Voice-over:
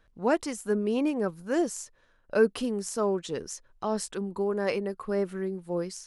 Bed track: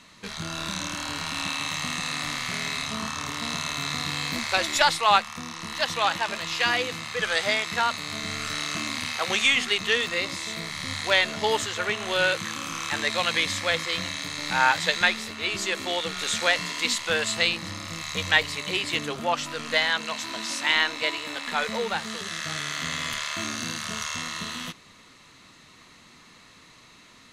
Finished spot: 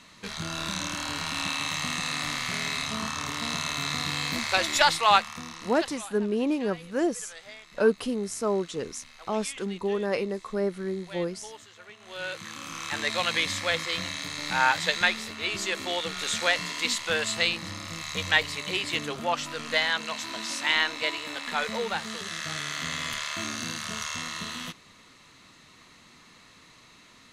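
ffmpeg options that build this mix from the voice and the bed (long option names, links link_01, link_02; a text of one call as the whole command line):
ffmpeg -i stem1.wav -i stem2.wav -filter_complex "[0:a]adelay=5450,volume=0.5dB[link_01];[1:a]volume=18.5dB,afade=type=out:start_time=5.18:duration=0.88:silence=0.0944061,afade=type=in:start_time=11.99:duration=1.14:silence=0.112202[link_02];[link_01][link_02]amix=inputs=2:normalize=0" out.wav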